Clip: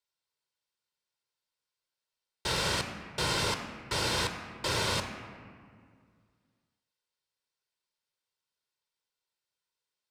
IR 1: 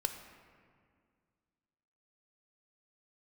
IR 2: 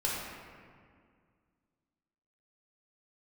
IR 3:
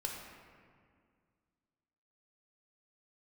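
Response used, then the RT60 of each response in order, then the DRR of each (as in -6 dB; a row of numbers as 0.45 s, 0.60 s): 1; 2.0 s, 2.0 s, 2.0 s; 6.0 dB, -6.0 dB, -0.5 dB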